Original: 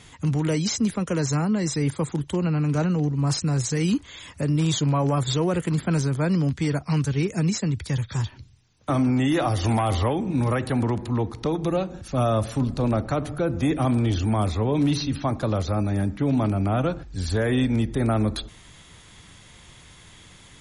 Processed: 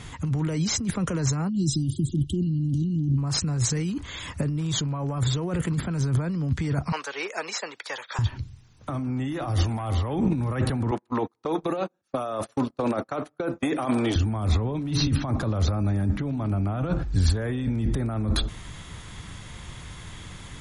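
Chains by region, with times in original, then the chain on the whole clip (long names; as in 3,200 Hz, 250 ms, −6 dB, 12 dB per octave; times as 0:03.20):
0:01.49–0:03.18: linear-phase brick-wall band-stop 380–2,800 Hz + parametric band 6,600 Hz −4.5 dB 0.43 octaves + one half of a high-frequency compander decoder only
0:06.92–0:08.19: high-pass filter 560 Hz 24 dB per octave + parametric band 9,300 Hz −11.5 dB 0.95 octaves
0:10.91–0:14.16: high-pass filter 380 Hz + noise gate −35 dBFS, range −38 dB
whole clip: parametric band 1,200 Hz +4.5 dB 1.4 octaves; compressor whose output falls as the input rises −28 dBFS, ratio −1; low-shelf EQ 240 Hz +9 dB; level −2 dB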